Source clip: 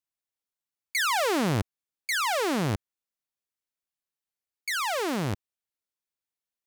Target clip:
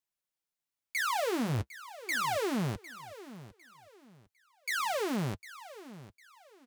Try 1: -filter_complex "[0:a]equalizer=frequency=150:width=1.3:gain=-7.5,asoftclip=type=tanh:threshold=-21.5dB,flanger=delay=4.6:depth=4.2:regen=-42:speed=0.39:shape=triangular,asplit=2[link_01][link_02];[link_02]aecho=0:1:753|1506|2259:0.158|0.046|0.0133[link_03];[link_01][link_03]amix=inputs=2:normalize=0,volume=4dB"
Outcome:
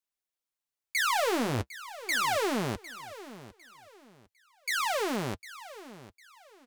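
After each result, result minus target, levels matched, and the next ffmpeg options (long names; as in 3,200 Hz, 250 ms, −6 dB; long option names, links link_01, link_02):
125 Hz band −5.0 dB; soft clipping: distortion −7 dB
-filter_complex "[0:a]asoftclip=type=tanh:threshold=-21.5dB,flanger=delay=4.6:depth=4.2:regen=-42:speed=0.39:shape=triangular,asplit=2[link_01][link_02];[link_02]aecho=0:1:753|1506|2259:0.158|0.046|0.0133[link_03];[link_01][link_03]amix=inputs=2:normalize=0,volume=4dB"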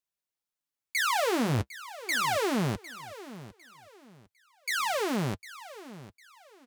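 soft clipping: distortion −9 dB
-filter_complex "[0:a]asoftclip=type=tanh:threshold=-29dB,flanger=delay=4.6:depth=4.2:regen=-42:speed=0.39:shape=triangular,asplit=2[link_01][link_02];[link_02]aecho=0:1:753|1506|2259:0.158|0.046|0.0133[link_03];[link_01][link_03]amix=inputs=2:normalize=0,volume=4dB"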